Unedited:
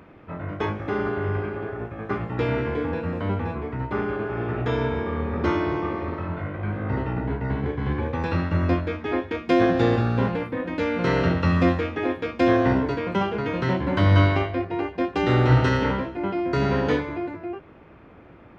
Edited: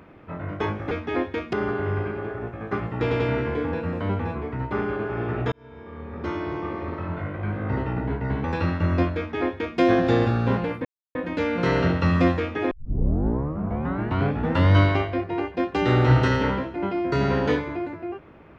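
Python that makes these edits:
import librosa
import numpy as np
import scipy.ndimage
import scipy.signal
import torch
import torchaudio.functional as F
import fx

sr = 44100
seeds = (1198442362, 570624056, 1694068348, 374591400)

y = fx.edit(x, sr, fx.stutter(start_s=2.4, slice_s=0.09, count=3),
    fx.fade_in_span(start_s=4.72, length_s=1.65),
    fx.cut(start_s=7.64, length_s=0.51),
    fx.duplicate(start_s=8.88, length_s=0.62, to_s=0.91),
    fx.insert_silence(at_s=10.56, length_s=0.3),
    fx.tape_start(start_s=12.12, length_s=2.04), tone=tone)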